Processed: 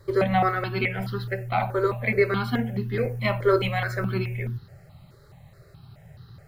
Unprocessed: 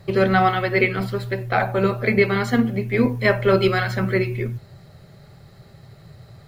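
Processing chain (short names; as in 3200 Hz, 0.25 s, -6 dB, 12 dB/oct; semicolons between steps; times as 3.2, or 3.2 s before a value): step phaser 4.7 Hz 720–2300 Hz; gain -1.5 dB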